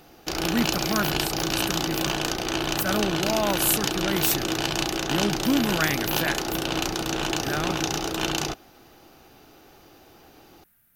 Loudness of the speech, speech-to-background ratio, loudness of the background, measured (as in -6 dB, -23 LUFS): -28.0 LUFS, -2.0 dB, -26.0 LUFS